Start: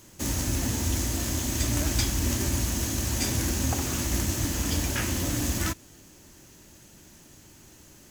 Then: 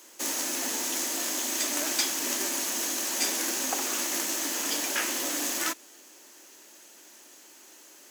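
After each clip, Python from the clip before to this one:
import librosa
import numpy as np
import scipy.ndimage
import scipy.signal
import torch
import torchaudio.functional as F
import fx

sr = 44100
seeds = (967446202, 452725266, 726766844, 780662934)

y = scipy.signal.sosfilt(scipy.signal.bessel(8, 470.0, 'highpass', norm='mag', fs=sr, output='sos'), x)
y = F.gain(torch.from_numpy(y), 2.5).numpy()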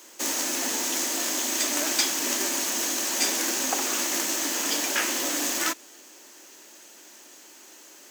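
y = fx.peak_eq(x, sr, hz=11000.0, db=-6.5, octaves=0.26)
y = F.gain(torch.from_numpy(y), 3.5).numpy()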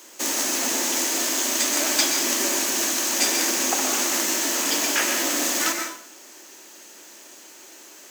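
y = fx.rev_plate(x, sr, seeds[0], rt60_s=0.6, hf_ratio=0.8, predelay_ms=110, drr_db=4.0)
y = F.gain(torch.from_numpy(y), 2.5).numpy()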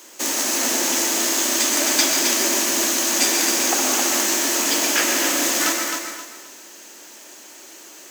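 y = fx.echo_feedback(x, sr, ms=264, feedback_pct=29, wet_db=-5.5)
y = F.gain(torch.from_numpy(y), 2.0).numpy()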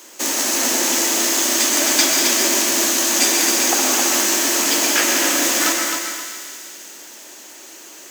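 y = fx.echo_thinned(x, sr, ms=197, feedback_pct=70, hz=1100.0, wet_db=-10.5)
y = F.gain(torch.from_numpy(y), 2.0).numpy()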